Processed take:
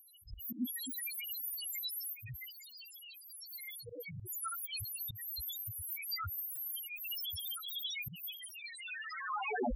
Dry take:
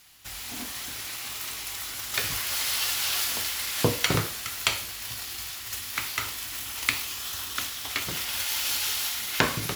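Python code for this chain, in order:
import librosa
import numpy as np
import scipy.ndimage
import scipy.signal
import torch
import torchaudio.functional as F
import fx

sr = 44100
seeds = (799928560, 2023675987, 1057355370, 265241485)

y = fx.tape_stop_end(x, sr, length_s=1.42)
y = fx.high_shelf(y, sr, hz=9900.0, db=8.0)
y = fx.over_compress(y, sr, threshold_db=-31.0, ratio=-0.5)
y = fx.spec_topn(y, sr, count=1)
y = fx.auto_swell(y, sr, attack_ms=122.0)
y = F.gain(torch.from_numpy(y), 12.5).numpy()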